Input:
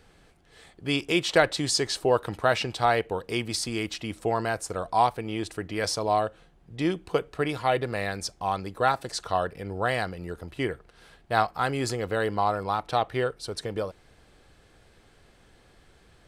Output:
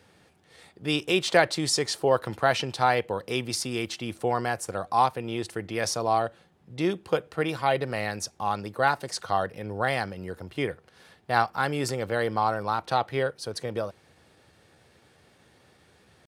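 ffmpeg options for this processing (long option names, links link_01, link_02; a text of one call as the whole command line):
ffmpeg -i in.wav -af "highpass=frequency=77:width=0.5412,highpass=frequency=77:width=1.3066,asetrate=46722,aresample=44100,atempo=0.943874" out.wav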